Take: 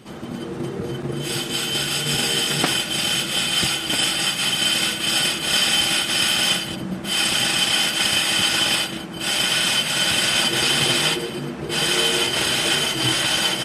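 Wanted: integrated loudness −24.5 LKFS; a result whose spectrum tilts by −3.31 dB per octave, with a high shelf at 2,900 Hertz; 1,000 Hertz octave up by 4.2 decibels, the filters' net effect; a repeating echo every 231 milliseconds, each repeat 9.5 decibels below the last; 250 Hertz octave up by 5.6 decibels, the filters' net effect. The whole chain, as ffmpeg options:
ffmpeg -i in.wav -af "equalizer=frequency=250:width_type=o:gain=7.5,equalizer=frequency=1000:width_type=o:gain=6.5,highshelf=frequency=2900:gain=-8.5,aecho=1:1:231|462|693|924:0.335|0.111|0.0365|0.012,volume=-3.5dB" out.wav

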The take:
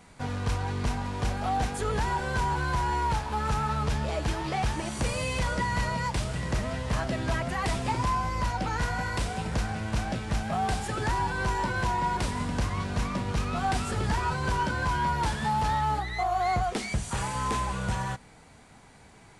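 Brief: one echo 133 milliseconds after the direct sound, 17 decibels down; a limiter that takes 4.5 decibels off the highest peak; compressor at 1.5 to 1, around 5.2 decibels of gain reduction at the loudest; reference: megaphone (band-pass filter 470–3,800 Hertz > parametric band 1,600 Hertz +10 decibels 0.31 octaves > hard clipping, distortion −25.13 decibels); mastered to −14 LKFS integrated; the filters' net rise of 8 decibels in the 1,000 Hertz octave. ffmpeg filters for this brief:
ffmpeg -i in.wav -af "equalizer=frequency=1000:width_type=o:gain=9,acompressor=threshold=-32dB:ratio=1.5,alimiter=limit=-22dB:level=0:latency=1,highpass=470,lowpass=3800,equalizer=frequency=1600:width_type=o:width=0.31:gain=10,aecho=1:1:133:0.141,asoftclip=type=hard:threshold=-22.5dB,volume=16dB" out.wav

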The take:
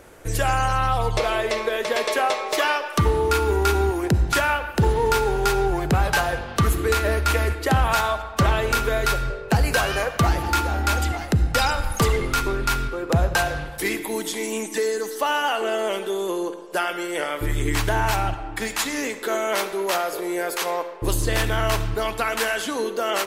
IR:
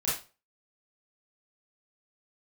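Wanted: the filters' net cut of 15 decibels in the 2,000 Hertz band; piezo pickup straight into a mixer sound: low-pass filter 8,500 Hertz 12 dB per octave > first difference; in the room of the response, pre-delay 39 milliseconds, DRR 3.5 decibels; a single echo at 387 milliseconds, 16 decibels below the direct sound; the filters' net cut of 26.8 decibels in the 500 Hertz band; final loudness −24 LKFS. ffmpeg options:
-filter_complex "[0:a]equalizer=frequency=500:width_type=o:gain=-5,equalizer=frequency=2000:width_type=o:gain=-4,aecho=1:1:387:0.158,asplit=2[link_01][link_02];[1:a]atrim=start_sample=2205,adelay=39[link_03];[link_02][link_03]afir=irnorm=-1:irlink=0,volume=-11dB[link_04];[link_01][link_04]amix=inputs=2:normalize=0,lowpass=8500,aderivative,volume=10.5dB"

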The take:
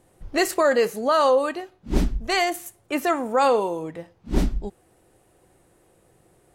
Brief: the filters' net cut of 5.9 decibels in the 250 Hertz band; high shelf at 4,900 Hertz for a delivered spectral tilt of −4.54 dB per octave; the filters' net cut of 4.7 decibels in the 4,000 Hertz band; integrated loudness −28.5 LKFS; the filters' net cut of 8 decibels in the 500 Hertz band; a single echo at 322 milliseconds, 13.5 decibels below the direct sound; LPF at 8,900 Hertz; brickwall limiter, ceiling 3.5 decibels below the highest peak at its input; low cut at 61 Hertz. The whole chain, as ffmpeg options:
ffmpeg -i in.wav -af "highpass=61,lowpass=8900,equalizer=frequency=250:width_type=o:gain=-4.5,equalizer=frequency=500:width_type=o:gain=-8.5,equalizer=frequency=4000:width_type=o:gain=-4,highshelf=frequency=4900:gain=-4,alimiter=limit=-17.5dB:level=0:latency=1,aecho=1:1:322:0.211,volume=1dB" out.wav

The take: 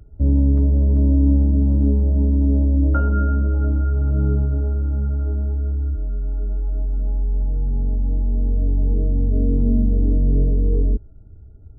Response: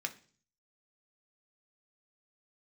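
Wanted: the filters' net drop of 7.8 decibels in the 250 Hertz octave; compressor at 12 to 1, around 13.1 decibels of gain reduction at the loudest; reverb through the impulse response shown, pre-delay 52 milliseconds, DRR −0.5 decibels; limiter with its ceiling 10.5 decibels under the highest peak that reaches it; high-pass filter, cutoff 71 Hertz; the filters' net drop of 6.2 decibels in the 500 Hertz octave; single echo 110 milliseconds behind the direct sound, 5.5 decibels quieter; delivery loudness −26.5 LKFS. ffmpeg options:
-filter_complex "[0:a]highpass=71,equalizer=frequency=250:width_type=o:gain=-8,equalizer=frequency=500:width_type=o:gain=-5,acompressor=threshold=-30dB:ratio=12,alimiter=level_in=10dB:limit=-24dB:level=0:latency=1,volume=-10dB,aecho=1:1:110:0.531,asplit=2[link_01][link_02];[1:a]atrim=start_sample=2205,adelay=52[link_03];[link_02][link_03]afir=irnorm=-1:irlink=0,volume=-1dB[link_04];[link_01][link_04]amix=inputs=2:normalize=0,volume=16dB"

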